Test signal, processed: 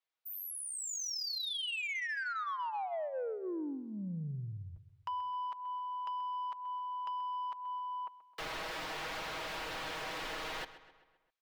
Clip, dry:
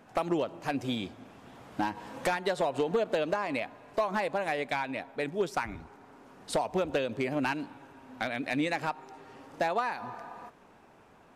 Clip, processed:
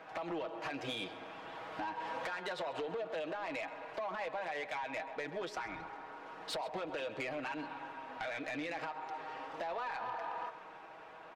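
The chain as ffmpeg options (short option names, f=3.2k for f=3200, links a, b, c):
-filter_complex "[0:a]acrossover=split=440 4500:gain=0.158 1 0.112[a][b][c];[a][b][c]amix=inputs=3:normalize=0,aecho=1:1:6.3:0.6,alimiter=level_in=4dB:limit=-24dB:level=0:latency=1:release=12,volume=-4dB,acompressor=threshold=-41dB:ratio=6,asoftclip=type=tanh:threshold=-39dB,asplit=2[d][e];[e]adelay=131,lowpass=f=4.7k:p=1,volume=-14.5dB,asplit=2[f][g];[g]adelay=131,lowpass=f=4.7k:p=1,volume=0.54,asplit=2[h][i];[i]adelay=131,lowpass=f=4.7k:p=1,volume=0.54,asplit=2[j][k];[k]adelay=131,lowpass=f=4.7k:p=1,volume=0.54,asplit=2[l][m];[m]adelay=131,lowpass=f=4.7k:p=1,volume=0.54[n];[d][f][h][j][l][n]amix=inputs=6:normalize=0,volume=6.5dB"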